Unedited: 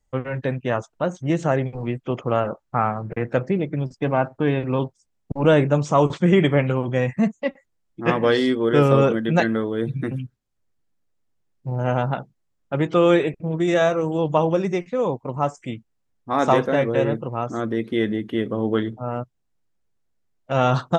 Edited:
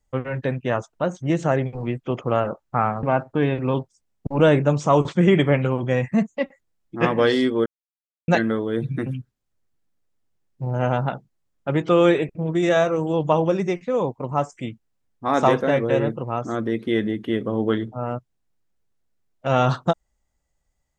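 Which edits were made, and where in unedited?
0:03.03–0:04.08: remove
0:08.71–0:09.33: silence

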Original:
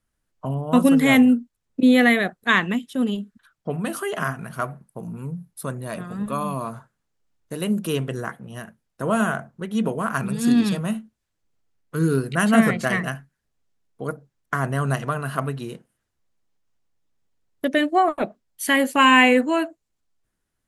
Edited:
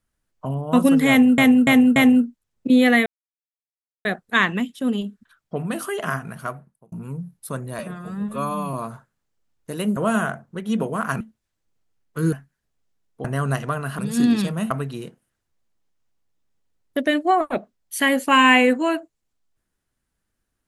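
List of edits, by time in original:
0:01.09–0:01.38: repeat, 4 plays
0:02.19: splice in silence 0.99 s
0:04.45–0:05.06: fade out
0:05.93–0:06.56: time-stretch 1.5×
0:07.79–0:09.02: remove
0:10.26–0:10.98: move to 0:15.38
0:12.10–0:13.13: remove
0:14.05–0:14.64: remove

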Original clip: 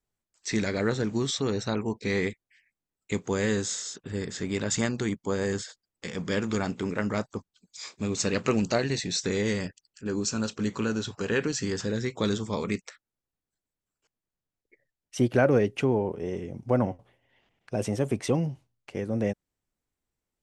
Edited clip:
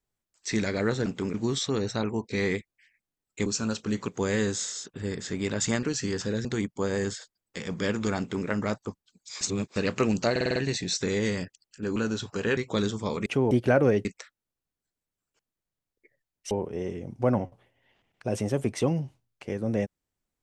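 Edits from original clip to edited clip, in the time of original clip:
0:06.67–0:06.95: duplicate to 0:01.06
0:07.89–0:08.24: reverse
0:08.79: stutter 0.05 s, 6 plays
0:10.19–0:10.81: move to 0:03.18
0:11.42–0:12.04: move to 0:04.93
0:12.73–0:15.19: swap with 0:15.73–0:15.98

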